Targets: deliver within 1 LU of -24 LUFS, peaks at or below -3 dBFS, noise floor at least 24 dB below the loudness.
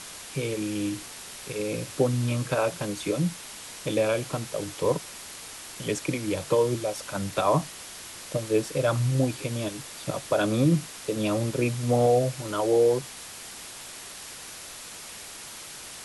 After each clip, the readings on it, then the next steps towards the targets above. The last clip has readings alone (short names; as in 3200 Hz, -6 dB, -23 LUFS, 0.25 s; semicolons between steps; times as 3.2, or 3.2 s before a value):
noise floor -42 dBFS; noise floor target -51 dBFS; loudness -27.0 LUFS; peak -11.0 dBFS; loudness target -24.0 LUFS
-> denoiser 9 dB, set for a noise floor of -42 dBFS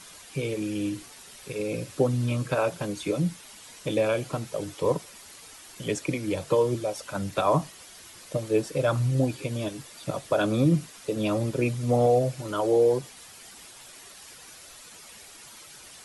noise floor -48 dBFS; noise floor target -51 dBFS
-> denoiser 6 dB, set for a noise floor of -48 dBFS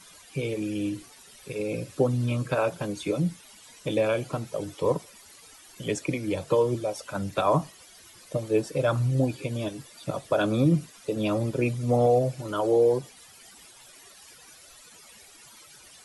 noise floor -52 dBFS; loudness -27.5 LUFS; peak -11.0 dBFS; loudness target -24.0 LUFS
-> gain +3.5 dB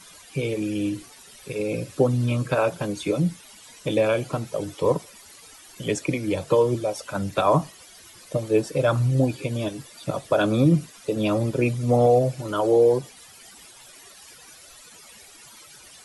loudness -24.0 LUFS; peak -7.5 dBFS; noise floor -48 dBFS